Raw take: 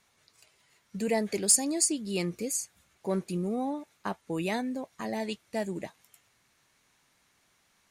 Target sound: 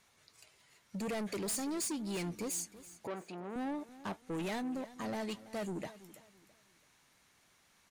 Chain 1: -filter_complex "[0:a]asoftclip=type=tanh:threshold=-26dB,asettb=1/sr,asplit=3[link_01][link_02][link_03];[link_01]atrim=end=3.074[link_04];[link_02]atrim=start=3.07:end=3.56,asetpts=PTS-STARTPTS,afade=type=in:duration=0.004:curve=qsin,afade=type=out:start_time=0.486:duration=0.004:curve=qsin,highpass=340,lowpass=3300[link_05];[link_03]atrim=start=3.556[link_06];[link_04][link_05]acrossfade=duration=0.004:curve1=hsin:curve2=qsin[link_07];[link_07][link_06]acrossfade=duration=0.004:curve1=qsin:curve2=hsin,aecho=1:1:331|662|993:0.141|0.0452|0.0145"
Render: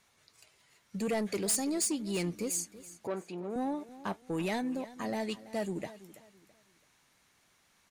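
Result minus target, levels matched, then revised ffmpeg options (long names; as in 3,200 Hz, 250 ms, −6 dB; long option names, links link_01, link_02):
soft clipping: distortion −4 dB
-filter_complex "[0:a]asoftclip=type=tanh:threshold=-34.5dB,asettb=1/sr,asplit=3[link_01][link_02][link_03];[link_01]atrim=end=3.074[link_04];[link_02]atrim=start=3.07:end=3.56,asetpts=PTS-STARTPTS,afade=type=in:duration=0.004:curve=qsin,afade=type=out:start_time=0.486:duration=0.004:curve=qsin,highpass=340,lowpass=3300[link_05];[link_03]atrim=start=3.556[link_06];[link_04][link_05]acrossfade=duration=0.004:curve1=hsin:curve2=qsin[link_07];[link_07][link_06]acrossfade=duration=0.004:curve1=qsin:curve2=hsin,aecho=1:1:331|662|993:0.141|0.0452|0.0145"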